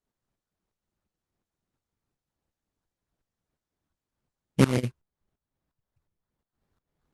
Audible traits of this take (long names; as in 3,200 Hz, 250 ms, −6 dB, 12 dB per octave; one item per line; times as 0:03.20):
phaser sweep stages 4, 3.8 Hz, lowest notch 570–2,400 Hz
tremolo saw up 2.8 Hz, depth 90%
aliases and images of a low sample rate 2,600 Hz, jitter 20%
Opus